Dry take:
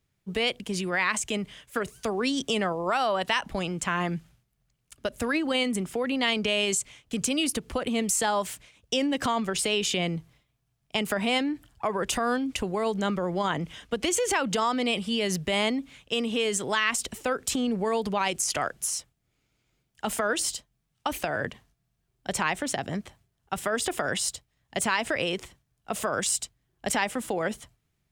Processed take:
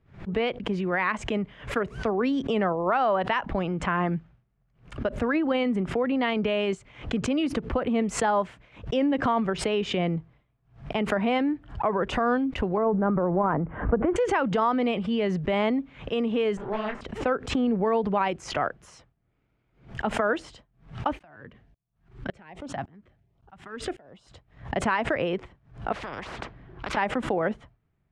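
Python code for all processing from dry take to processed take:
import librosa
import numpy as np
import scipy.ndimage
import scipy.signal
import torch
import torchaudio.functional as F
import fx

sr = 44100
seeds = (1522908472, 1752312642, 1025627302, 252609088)

y = fx.chain(x, sr, fx.lowpass(hz=1500.0, slope=24),
    fx.transient(attack_db=3, sustain_db=7),
    fx.pre_swell(db_per_s=100.0), at=(12.77, 14.16))
y = fx.chain(y, sr, fx.lower_of_two(delay_ms=4.9),
    fx.high_shelf(hz=4100.0, db=-10.0),
    fx.detune_double(cents=58), at=(16.57, 17.01))
y = fx.chain(y, sr, fx.law_mismatch(coded='mu'),
    fx.filter_lfo_notch(shape='saw_up', hz=1.3, low_hz=380.0, high_hz=2200.0, q=1.6),
    fx.tremolo_decay(direction='swelling', hz=1.8, depth_db=29), at=(21.19, 24.31))
y = fx.chain(y, sr, fx.lowpass(hz=4100.0, slope=12),
    fx.spectral_comp(ratio=10.0), at=(25.92, 26.97))
y = scipy.signal.sosfilt(scipy.signal.butter(2, 1600.0, 'lowpass', fs=sr, output='sos'), y)
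y = fx.pre_swell(y, sr, db_per_s=140.0)
y = y * librosa.db_to_amplitude(3.0)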